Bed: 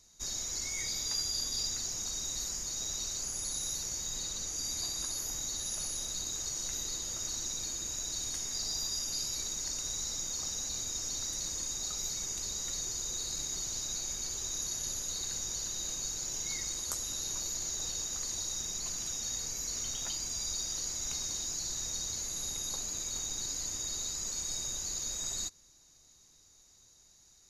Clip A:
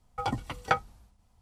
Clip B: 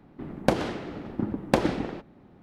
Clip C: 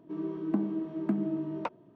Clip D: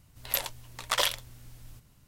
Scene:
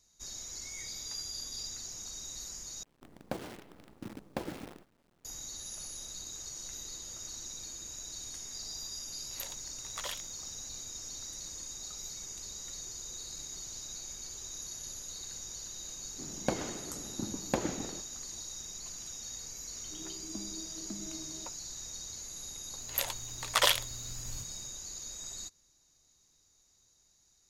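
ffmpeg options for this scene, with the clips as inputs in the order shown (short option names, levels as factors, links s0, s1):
-filter_complex "[2:a]asplit=2[s0][s1];[4:a]asplit=2[s2][s3];[0:a]volume=0.473[s4];[s0]acrusher=bits=6:dc=4:mix=0:aa=0.000001[s5];[s3]dynaudnorm=f=280:g=3:m=3.76[s6];[s4]asplit=2[s7][s8];[s7]atrim=end=2.834[s9];[s5]atrim=end=2.42,asetpts=PTS-STARTPTS,volume=0.168[s10];[s8]atrim=start=5.246[s11];[s2]atrim=end=2.07,asetpts=PTS-STARTPTS,volume=0.2,afade=t=in:d=0.004:c=hsin,afade=t=out:st=2.066:d=0.004:c=hsin,adelay=399546S[s12];[s1]atrim=end=2.42,asetpts=PTS-STARTPTS,volume=0.335,afade=t=in:d=0.004:c=hsin,afade=t=out:st=2.416:d=0.004:c=hsin,adelay=16000[s13];[3:a]atrim=end=1.95,asetpts=PTS-STARTPTS,volume=0.178,afade=t=in:d=0.004:c=hsin,afade=t=out:st=1.946:d=0.004:c=hsin,adelay=19810[s14];[s6]atrim=end=2.07,asetpts=PTS-STARTPTS,volume=0.501,afade=t=in:d=0.004:c=hsin,afade=t=out:st=2.066:d=0.004:c=hsin,adelay=22640[s15];[s9][s10]acrossfade=d=0.004:c1=hsin:c2=hsin[s16];[s16][s11]acrossfade=d=0.004:c1=hsin:c2=hsin[s17];[s17][s12][s13][s14][s15]amix=inputs=5:normalize=0"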